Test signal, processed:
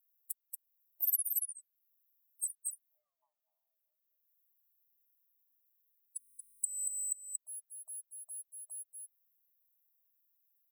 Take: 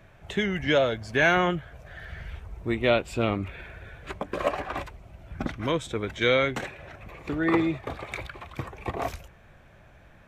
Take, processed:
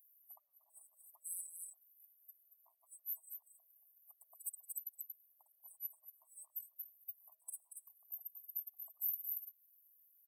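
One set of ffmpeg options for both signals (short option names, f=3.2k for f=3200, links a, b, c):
-filter_complex "[0:a]firequalizer=gain_entry='entry(120,0);entry(180,-20);entry(290,7);entry(430,-5);entry(1200,13);entry(1800,-22);entry(2700,-24);entry(4100,-14);entry(7600,-30);entry(12000,13)':delay=0.05:min_phase=1,aeval=exprs='0.126*(abs(mod(val(0)/0.126+3,4)-2)-1)':c=same,aecho=1:1:4.8:0.97,afftdn=nr=22:nf=-45,equalizer=f=3.5k:t=o:w=2.4:g=12,afftfilt=real='re*(1-between(b*sr/4096,440,7500))':imag='im*(1-between(b*sr/4096,440,7500))':win_size=4096:overlap=0.75,asplit=2[a][b];[b]aecho=0:1:231:0.316[c];[a][c]amix=inputs=2:normalize=0,acompressor=threshold=-52dB:ratio=2,aexciter=amount=5.5:drive=5.4:freq=4.5k,acrossover=split=250[d][e];[e]acompressor=threshold=-50dB:ratio=2[f];[d][f]amix=inputs=2:normalize=0,afftfilt=real='re*eq(mod(floor(b*sr/1024/610),2),1)':imag='im*eq(mod(floor(b*sr/1024/610),2),1)':win_size=1024:overlap=0.75,volume=9dB"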